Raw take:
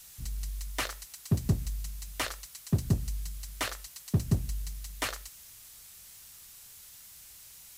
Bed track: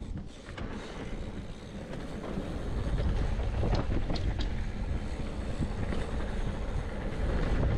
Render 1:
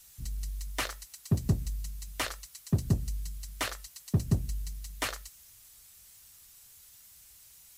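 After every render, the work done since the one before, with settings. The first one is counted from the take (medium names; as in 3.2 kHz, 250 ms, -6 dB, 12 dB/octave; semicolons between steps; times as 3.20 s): noise reduction 6 dB, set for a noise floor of -52 dBFS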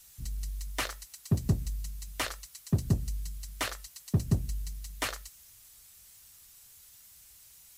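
no audible change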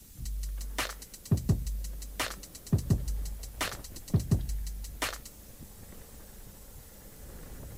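add bed track -17 dB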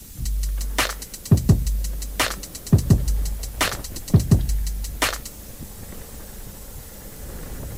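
trim +11.5 dB; peak limiter -3 dBFS, peak gain reduction 1 dB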